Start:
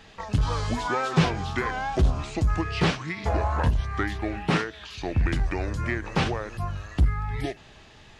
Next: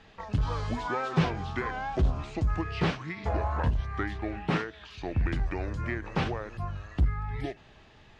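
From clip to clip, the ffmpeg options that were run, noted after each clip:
-af "aemphasis=mode=reproduction:type=50fm,volume=0.596"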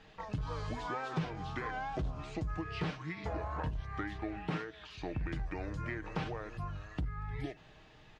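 -af "aecho=1:1:6.5:0.37,acompressor=threshold=0.0251:ratio=2.5,volume=0.668"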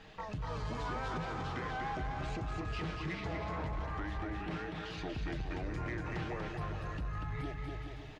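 -filter_complex "[0:a]alimiter=level_in=2.51:limit=0.0631:level=0:latency=1:release=248,volume=0.398,asplit=2[s0][s1];[s1]aecho=0:1:240|420|555|656.2|732.2:0.631|0.398|0.251|0.158|0.1[s2];[s0][s2]amix=inputs=2:normalize=0,asoftclip=type=tanh:threshold=0.02,volume=1.5"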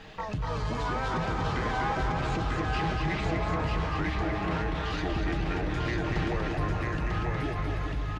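-af "aecho=1:1:946:0.708,volume=2.37"

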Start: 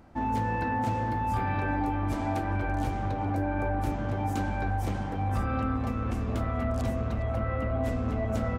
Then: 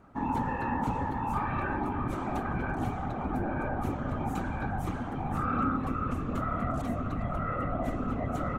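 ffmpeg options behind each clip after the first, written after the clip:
-af "afftfilt=real='hypot(re,im)*cos(2*PI*random(0))':imag='hypot(re,im)*sin(2*PI*random(1))':win_size=512:overlap=0.75,equalizer=f=250:t=o:w=0.33:g=6,equalizer=f=1250:t=o:w=0.33:g=11,equalizer=f=5000:t=o:w=0.33:g=-7,volume=1.26"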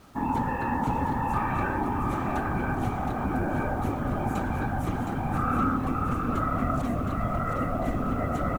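-filter_complex "[0:a]acrusher=bits=9:mix=0:aa=0.000001,asplit=2[s0][s1];[s1]aecho=0:1:717:0.501[s2];[s0][s2]amix=inputs=2:normalize=0,volume=1.41"

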